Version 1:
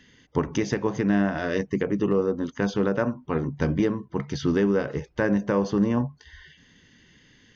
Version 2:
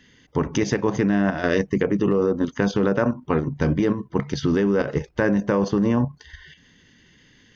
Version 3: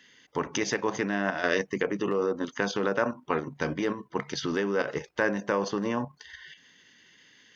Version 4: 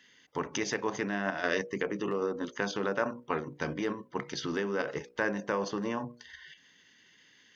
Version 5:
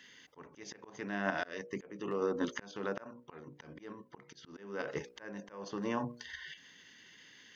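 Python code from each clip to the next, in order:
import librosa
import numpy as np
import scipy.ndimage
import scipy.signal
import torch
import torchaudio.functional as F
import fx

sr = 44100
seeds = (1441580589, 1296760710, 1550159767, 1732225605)

y1 = fx.level_steps(x, sr, step_db=9)
y1 = F.gain(torch.from_numpy(y1), 8.0).numpy()
y2 = fx.highpass(y1, sr, hz=790.0, slope=6)
y3 = fx.hum_notches(y2, sr, base_hz=60, count=10)
y3 = F.gain(torch.from_numpy(y3), -3.5).numpy()
y4 = fx.auto_swell(y3, sr, attack_ms=757.0)
y4 = F.gain(torch.from_numpy(y4), 3.5).numpy()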